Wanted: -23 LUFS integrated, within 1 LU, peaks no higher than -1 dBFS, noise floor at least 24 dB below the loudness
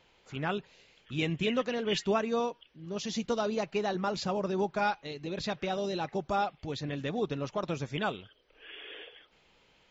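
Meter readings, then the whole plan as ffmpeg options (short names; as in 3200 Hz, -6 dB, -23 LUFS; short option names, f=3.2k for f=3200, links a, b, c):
loudness -33.0 LUFS; peak -16.5 dBFS; loudness target -23.0 LUFS
-> -af "volume=10dB"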